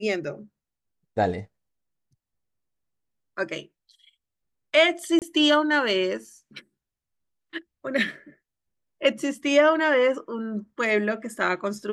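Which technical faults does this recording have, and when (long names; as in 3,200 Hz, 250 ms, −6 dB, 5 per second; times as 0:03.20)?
0:05.19–0:05.22: drop-out 28 ms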